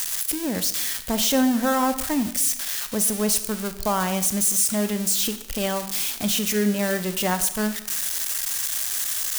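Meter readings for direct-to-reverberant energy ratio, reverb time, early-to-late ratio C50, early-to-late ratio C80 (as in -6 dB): 10.5 dB, 0.85 s, 12.0 dB, 14.5 dB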